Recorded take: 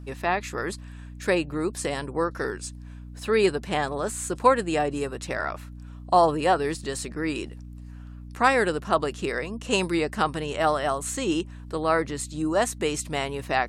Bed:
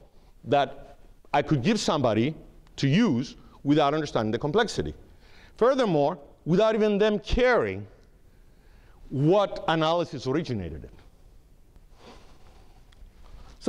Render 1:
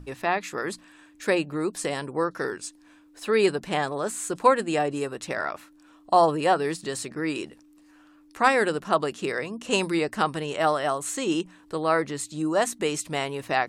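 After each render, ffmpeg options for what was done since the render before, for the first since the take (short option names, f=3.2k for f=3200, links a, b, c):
-af "bandreject=f=60:t=h:w=6,bandreject=f=120:t=h:w=6,bandreject=f=180:t=h:w=6,bandreject=f=240:t=h:w=6"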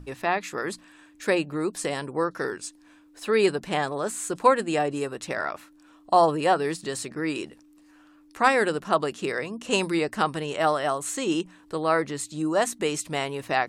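-af anull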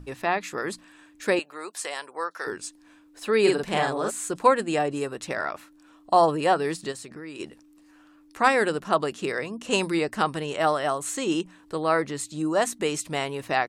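-filter_complex "[0:a]asettb=1/sr,asplit=3[a][b][c];[a]atrim=end=1.394[d];[b]atrim=start=1.39:end=2.47,asetpts=PTS-STARTPTS,afade=t=in:d=0.004:c=qsin,afade=t=out:st=1.076:d=0.004:c=qsin,highpass=750[e];[c]atrim=start=2.466[f];[d][e]acrossfade=d=0.004:c1=hsin:c2=qsin[g];[g][f]acrossfade=d=0.004:c1=qsin:c2=hsin,asplit=3[h][i][j];[h]afade=t=out:st=3.45:d=0.02[k];[i]asplit=2[l][m];[m]adelay=45,volume=-2dB[n];[l][n]amix=inputs=2:normalize=0,afade=t=in:st=3.45:d=0.02,afade=t=out:st=4.09:d=0.02[o];[j]afade=t=in:st=4.09:d=0.02[p];[k][o][p]amix=inputs=3:normalize=0,asplit=3[q][r][s];[q]afade=t=out:st=6.91:d=0.02[t];[r]acompressor=threshold=-39dB:ratio=3:attack=3.2:release=140:knee=1:detection=peak,afade=t=in:st=6.91:d=0.02,afade=t=out:st=7.39:d=0.02[u];[s]afade=t=in:st=7.39:d=0.02[v];[t][u][v]amix=inputs=3:normalize=0"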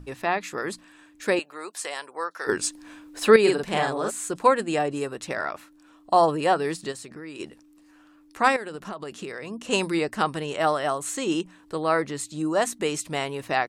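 -filter_complex "[0:a]asettb=1/sr,asplit=3[a][b][c];[a]atrim=end=8.564[d];[b]atrim=start=8.56:end=9.49,asetpts=PTS-STARTPTS,afade=t=in:d=0.004:c=qsin,afade=t=out:st=0.926:d=0.004:c=qsin,acompressor=threshold=-30dB:ratio=16:attack=3.2:release=140:knee=1:detection=peak[e];[c]atrim=start=9.486[f];[d][e]acrossfade=d=0.004:c1=hsin:c2=qsin[g];[g][f]acrossfade=d=0.004:c1=qsin:c2=hsin,asplit=3[h][i][j];[h]atrim=end=2.492[k];[i]atrim=start=2.488:end=3.362,asetpts=PTS-STARTPTS,volume=9.5dB[l];[j]atrim=start=3.358[m];[k][l]acrossfade=d=0.004:c1=hsin:c2=hsin[n];[n][m]acrossfade=d=0.004:c1=hsin:c2=hsin"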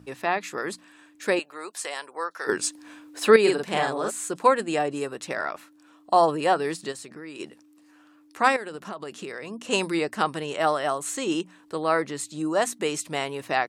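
-af "highpass=99,lowshelf=f=140:g=-5.5"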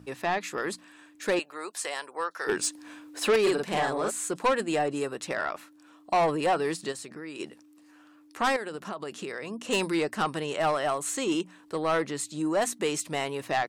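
-af "asoftclip=type=tanh:threshold=-18.5dB"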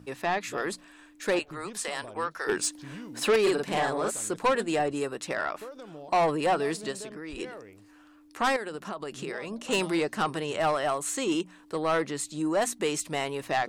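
-filter_complex "[1:a]volume=-21.5dB[a];[0:a][a]amix=inputs=2:normalize=0"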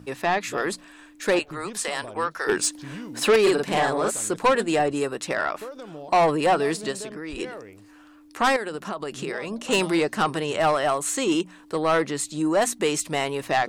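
-af "volume=5dB"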